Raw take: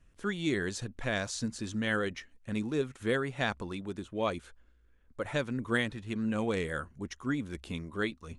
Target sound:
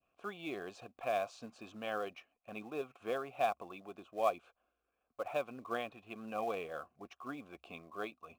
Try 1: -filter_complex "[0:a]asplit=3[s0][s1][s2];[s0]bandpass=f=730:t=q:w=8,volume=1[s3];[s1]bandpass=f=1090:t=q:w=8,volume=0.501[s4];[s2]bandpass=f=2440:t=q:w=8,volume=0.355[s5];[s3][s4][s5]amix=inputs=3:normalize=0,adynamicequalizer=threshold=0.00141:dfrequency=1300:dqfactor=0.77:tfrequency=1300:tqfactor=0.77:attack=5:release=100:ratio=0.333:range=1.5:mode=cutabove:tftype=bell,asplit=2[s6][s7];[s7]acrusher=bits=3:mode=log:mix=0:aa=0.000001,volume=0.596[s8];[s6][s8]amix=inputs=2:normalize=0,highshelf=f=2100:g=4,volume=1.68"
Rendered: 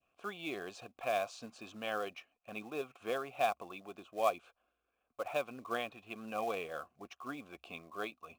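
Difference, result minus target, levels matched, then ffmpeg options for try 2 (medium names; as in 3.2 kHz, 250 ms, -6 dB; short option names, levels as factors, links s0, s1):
4 kHz band +3.5 dB
-filter_complex "[0:a]asplit=3[s0][s1][s2];[s0]bandpass=f=730:t=q:w=8,volume=1[s3];[s1]bandpass=f=1090:t=q:w=8,volume=0.501[s4];[s2]bandpass=f=2440:t=q:w=8,volume=0.355[s5];[s3][s4][s5]amix=inputs=3:normalize=0,adynamicequalizer=threshold=0.00141:dfrequency=1300:dqfactor=0.77:tfrequency=1300:tqfactor=0.77:attack=5:release=100:ratio=0.333:range=1.5:mode=cutabove:tftype=bell,asplit=2[s6][s7];[s7]acrusher=bits=3:mode=log:mix=0:aa=0.000001,volume=0.596[s8];[s6][s8]amix=inputs=2:normalize=0,highshelf=f=2100:g=-2,volume=1.68"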